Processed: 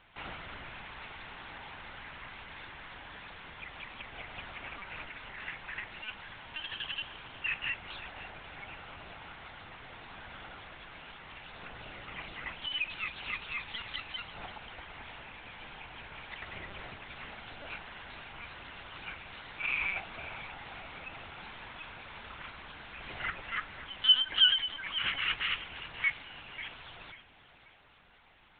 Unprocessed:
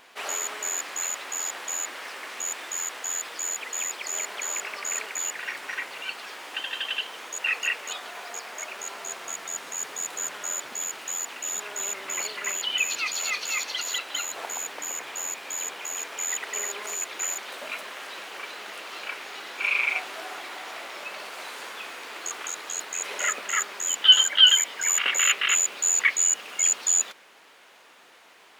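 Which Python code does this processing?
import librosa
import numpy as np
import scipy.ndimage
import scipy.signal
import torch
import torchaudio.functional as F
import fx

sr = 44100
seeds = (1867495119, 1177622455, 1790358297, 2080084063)

y = fx.echo_feedback(x, sr, ms=538, feedback_pct=32, wet_db=-14.0)
y = fx.lpc_vocoder(y, sr, seeds[0], excitation='pitch_kept', order=10)
y = F.gain(torch.from_numpy(y), -8.0).numpy()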